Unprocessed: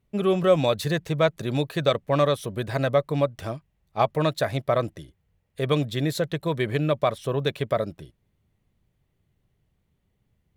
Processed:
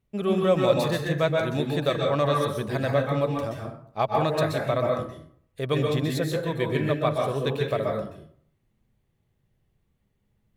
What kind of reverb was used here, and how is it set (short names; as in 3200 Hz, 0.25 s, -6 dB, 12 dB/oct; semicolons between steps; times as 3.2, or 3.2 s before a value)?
plate-style reverb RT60 0.58 s, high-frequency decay 0.55×, pre-delay 0.115 s, DRR -0.5 dB; gain -3.5 dB